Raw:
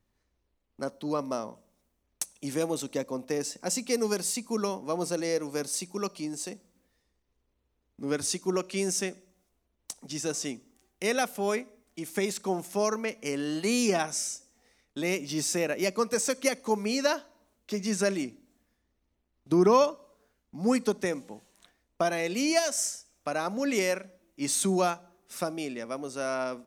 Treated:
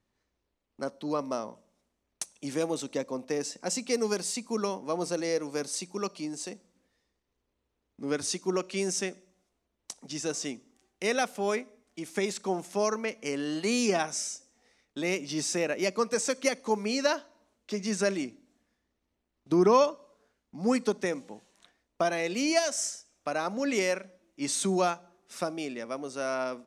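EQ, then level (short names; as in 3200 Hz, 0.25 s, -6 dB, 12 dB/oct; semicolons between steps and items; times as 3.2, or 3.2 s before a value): LPF 8100 Hz 12 dB/oct; low shelf 93 Hz -9.5 dB; 0.0 dB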